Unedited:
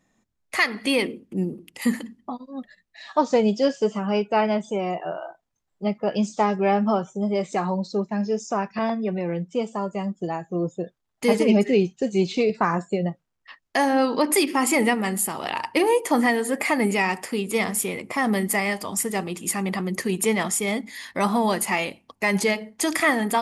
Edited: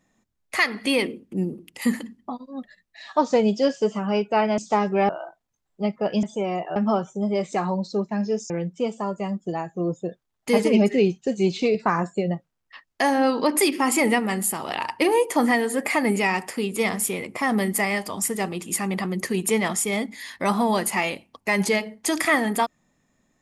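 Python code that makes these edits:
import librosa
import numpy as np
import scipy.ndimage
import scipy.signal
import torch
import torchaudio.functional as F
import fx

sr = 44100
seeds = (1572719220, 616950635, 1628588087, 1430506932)

y = fx.edit(x, sr, fx.swap(start_s=4.58, length_s=0.53, other_s=6.25, other_length_s=0.51),
    fx.cut(start_s=8.5, length_s=0.75), tone=tone)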